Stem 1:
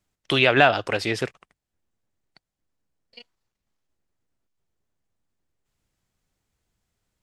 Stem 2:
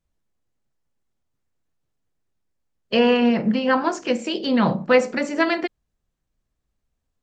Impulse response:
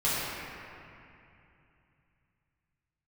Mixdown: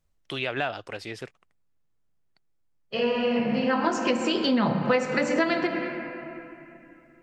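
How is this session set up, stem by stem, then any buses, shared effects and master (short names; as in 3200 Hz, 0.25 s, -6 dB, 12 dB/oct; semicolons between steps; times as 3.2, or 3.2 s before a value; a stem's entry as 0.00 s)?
-11.5 dB, 0.00 s, no send, dry
+2.5 dB, 0.00 s, send -18.5 dB, auto duck -21 dB, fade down 0.60 s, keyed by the first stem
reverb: on, RT60 2.7 s, pre-delay 7 ms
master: compressor 4:1, threshold -21 dBFS, peak gain reduction 11.5 dB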